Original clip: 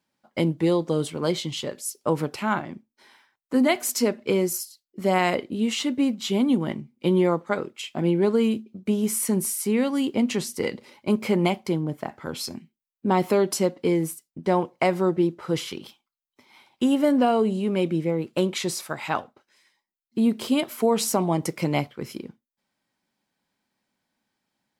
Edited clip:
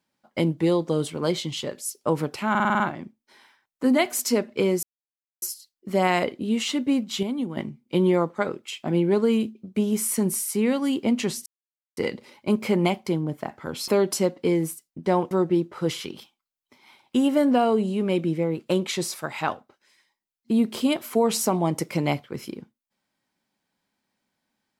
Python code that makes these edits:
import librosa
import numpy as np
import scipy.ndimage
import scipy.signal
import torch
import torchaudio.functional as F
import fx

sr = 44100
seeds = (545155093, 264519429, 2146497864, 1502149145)

y = fx.edit(x, sr, fx.stutter(start_s=2.5, slice_s=0.05, count=7),
    fx.insert_silence(at_s=4.53, length_s=0.59),
    fx.clip_gain(start_s=6.34, length_s=0.34, db=-7.0),
    fx.insert_silence(at_s=10.57, length_s=0.51),
    fx.cut(start_s=12.48, length_s=0.8),
    fx.cut(start_s=14.71, length_s=0.27), tone=tone)